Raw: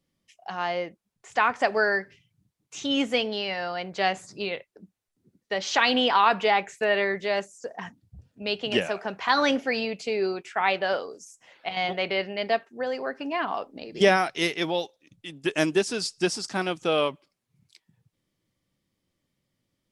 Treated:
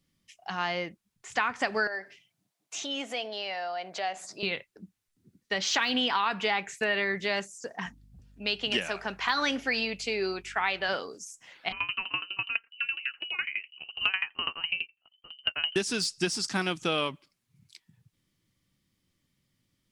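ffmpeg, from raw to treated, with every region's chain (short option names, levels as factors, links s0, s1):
-filter_complex "[0:a]asettb=1/sr,asplit=3[s0][s1][s2];[s0]atrim=end=1.874[s3];[s1]atrim=start=1.87:end=4.43,asetpts=PTS-STARTPTS,afade=t=in:d=0.004:c=qsin,afade=t=out:st=2.556:d=0.004:c=qsin,equalizer=f=670:w=2.6:g=14.5,acompressor=threshold=0.0158:ratio=2:attack=3.2:release=140:knee=1:detection=peak,highpass=350[s4];[s2]atrim=start=4.426[s5];[s3][s4]acrossfade=d=0.004:c1=hsin:c2=qsin[s6];[s6][s5]acrossfade=d=0.004:c1=qsin:c2=hsin,asettb=1/sr,asplit=3[s7][s8][s9];[s7]atrim=end=7.864[s10];[s8]atrim=start=7.86:end=10.89,asetpts=PTS-STARTPTS,afade=t=in:d=0.004:c=qsin,afade=t=out:st=3.026:d=0.004:c=qsin,highpass=f=300:p=1,aeval=exprs='val(0)+0.00112*(sin(2*PI*50*n/s)+sin(2*PI*2*50*n/s)/2+sin(2*PI*3*50*n/s)/3+sin(2*PI*4*50*n/s)/4+sin(2*PI*5*50*n/s)/5)':c=same[s11];[s9]atrim=start=10.886[s12];[s10][s11]acrossfade=d=0.004:c1=hsin:c2=qsin[s13];[s13][s12]acrossfade=d=0.004:c1=qsin:c2=hsin,asettb=1/sr,asplit=3[s14][s15][s16];[s14]atrim=end=11.724[s17];[s15]atrim=start=11.72:end=15.76,asetpts=PTS-STARTPTS,afade=t=in:d=0.004:c=qsin,afade=t=out:st=4.036:d=0.004:c=qsin,lowpass=f=2700:t=q:w=0.5098,lowpass=f=2700:t=q:w=0.6013,lowpass=f=2700:t=q:w=0.9,lowpass=f=2700:t=q:w=2.563,afreqshift=-3200,aeval=exprs='val(0)*pow(10,-22*if(lt(mod(12*n/s,1),2*abs(12)/1000),1-mod(12*n/s,1)/(2*abs(12)/1000),(mod(12*n/s,1)-2*abs(12)/1000)/(1-2*abs(12)/1000))/20)':c=same[s18];[s16]atrim=start=15.756[s19];[s17][s18]acrossfade=d=0.004:c1=hsin:c2=qsin[s20];[s20][s19]acrossfade=d=0.004:c1=qsin:c2=hsin,deesser=0.6,equalizer=f=570:t=o:w=1.6:g=-9,acompressor=threshold=0.0398:ratio=4,volume=1.58"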